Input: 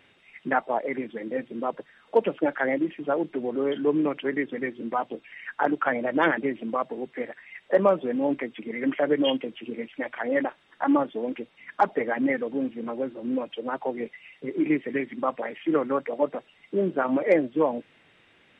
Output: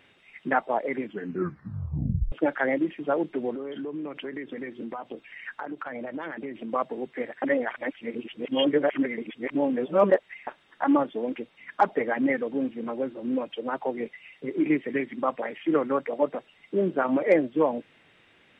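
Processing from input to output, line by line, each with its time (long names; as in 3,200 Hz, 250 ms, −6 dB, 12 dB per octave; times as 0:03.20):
0:01.04: tape stop 1.28 s
0:03.54–0:06.73: downward compressor 8 to 1, threshold −31 dBFS
0:07.42–0:10.47: reverse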